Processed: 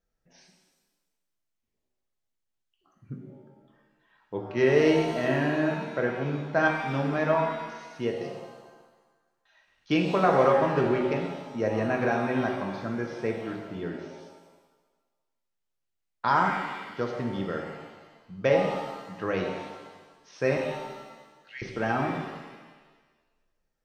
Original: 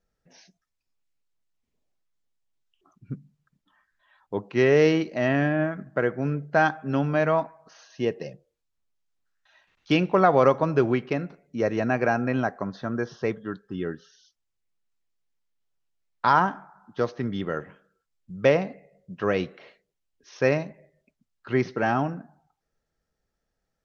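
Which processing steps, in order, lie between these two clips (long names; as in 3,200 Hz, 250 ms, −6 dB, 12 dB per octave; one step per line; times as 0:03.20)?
0:20.57–0:21.62: inverse Chebyshev high-pass filter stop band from 1,000 Hz, stop band 40 dB
reverb with rising layers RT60 1.3 s, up +7 semitones, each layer −8 dB, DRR 1.5 dB
level −5 dB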